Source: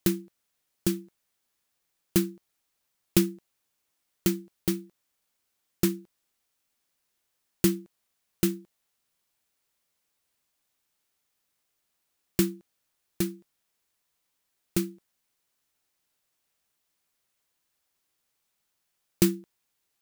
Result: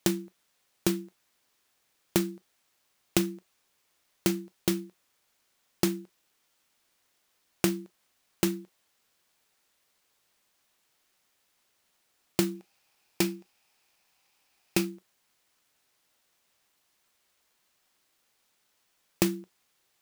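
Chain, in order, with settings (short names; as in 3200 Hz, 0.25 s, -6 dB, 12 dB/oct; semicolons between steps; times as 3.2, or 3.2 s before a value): 12.55–14.85 thirty-one-band EQ 800 Hz +9 dB, 2500 Hz +9 dB, 5000 Hz +6 dB; compressor 5:1, threshold -26 dBFS, peak gain reduction 10 dB; HPF 260 Hz 6 dB/oct; reverb, pre-delay 3 ms, DRR 15.5 dB; clock jitter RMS 0.021 ms; gain +7 dB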